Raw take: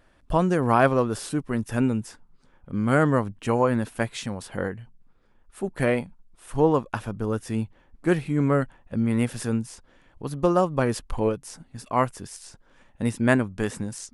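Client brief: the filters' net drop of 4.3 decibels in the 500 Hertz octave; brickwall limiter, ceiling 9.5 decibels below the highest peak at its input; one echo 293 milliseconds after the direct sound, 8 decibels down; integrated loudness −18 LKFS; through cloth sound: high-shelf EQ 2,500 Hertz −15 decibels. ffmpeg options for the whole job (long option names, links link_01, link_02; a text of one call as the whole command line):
ffmpeg -i in.wav -af "equalizer=frequency=500:width_type=o:gain=-4.5,alimiter=limit=-14.5dB:level=0:latency=1,highshelf=frequency=2500:gain=-15,aecho=1:1:293:0.398,volume=11dB" out.wav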